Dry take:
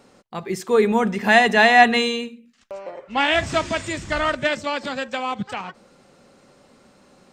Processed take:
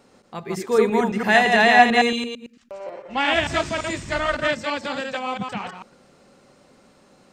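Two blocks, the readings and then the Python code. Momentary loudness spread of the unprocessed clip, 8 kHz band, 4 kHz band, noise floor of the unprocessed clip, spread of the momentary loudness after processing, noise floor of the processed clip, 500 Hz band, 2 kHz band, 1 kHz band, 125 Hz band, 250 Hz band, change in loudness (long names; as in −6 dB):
22 LU, −1.0 dB, −1.0 dB, −56 dBFS, 22 LU, −56 dBFS, −0.5 dB, −1.0 dB, −0.5 dB, −1.0 dB, −0.5 dB, −1.0 dB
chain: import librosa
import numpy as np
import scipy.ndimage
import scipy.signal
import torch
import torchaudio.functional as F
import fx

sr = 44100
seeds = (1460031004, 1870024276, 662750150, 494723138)

y = fx.reverse_delay(x, sr, ms=112, wet_db=-3)
y = y * librosa.db_to_amplitude(-2.5)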